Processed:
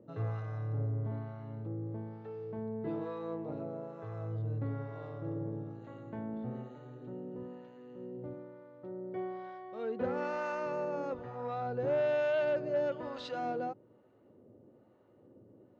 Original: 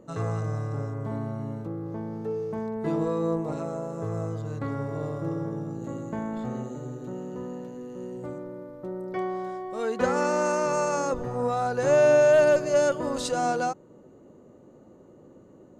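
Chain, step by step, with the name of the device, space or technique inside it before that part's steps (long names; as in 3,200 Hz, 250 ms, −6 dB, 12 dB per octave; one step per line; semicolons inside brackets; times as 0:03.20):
guitar amplifier with harmonic tremolo (two-band tremolo in antiphase 1.1 Hz, depth 70%, crossover 710 Hz; soft clipping −18.5 dBFS, distortion −18 dB; loudspeaker in its box 81–3,800 Hz, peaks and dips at 110 Hz +8 dB, 160 Hz −6 dB, 1,100 Hz −4 dB)
level −5.5 dB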